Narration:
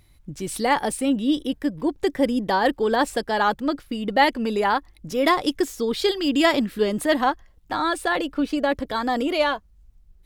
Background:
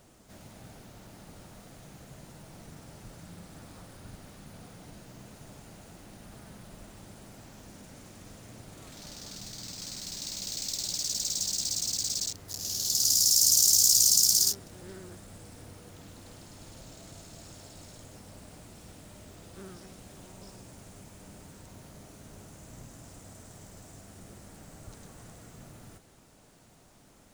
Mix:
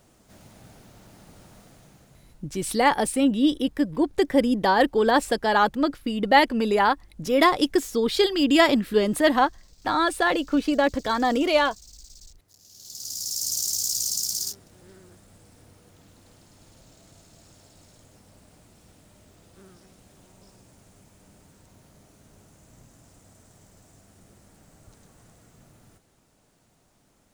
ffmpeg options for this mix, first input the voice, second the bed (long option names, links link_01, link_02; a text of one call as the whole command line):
ffmpeg -i stem1.wav -i stem2.wav -filter_complex "[0:a]adelay=2150,volume=1dB[link_01];[1:a]volume=13dB,afade=type=out:start_time=1.57:duration=0.96:silence=0.11885,afade=type=in:start_time=12.7:duration=0.85:silence=0.211349[link_02];[link_01][link_02]amix=inputs=2:normalize=0" out.wav